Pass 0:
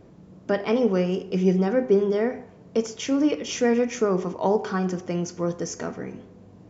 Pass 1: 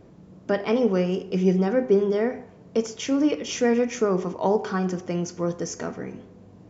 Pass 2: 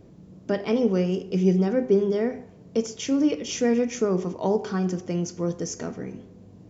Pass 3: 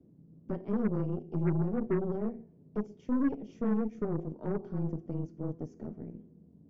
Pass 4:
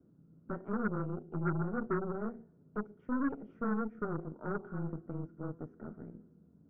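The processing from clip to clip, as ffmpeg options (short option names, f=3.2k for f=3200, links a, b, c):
-af anull
-af "equalizer=f=1.2k:t=o:w=2.5:g=-7,volume=1.5dB"
-af "afreqshift=-23,bandpass=f=220:t=q:w=1.4:csg=0,aeval=exprs='0.224*(cos(1*acos(clip(val(0)/0.224,-1,1)))-cos(1*PI/2))+0.0224*(cos(8*acos(clip(val(0)/0.224,-1,1)))-cos(8*PI/2))':c=same,volume=-6dB"
-af "lowpass=f=1.4k:t=q:w=9.3,volume=-5dB"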